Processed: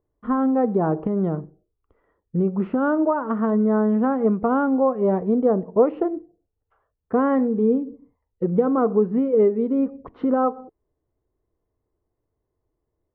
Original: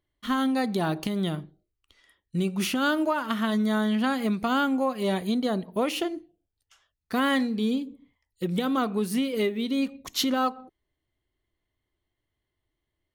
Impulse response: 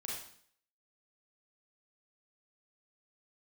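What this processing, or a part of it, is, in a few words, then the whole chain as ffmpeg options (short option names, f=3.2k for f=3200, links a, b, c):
under water: -af "lowpass=f=1.2k:w=0.5412,lowpass=f=1.2k:w=1.3066,equalizer=f=460:t=o:w=0.33:g=10,volume=4.5dB"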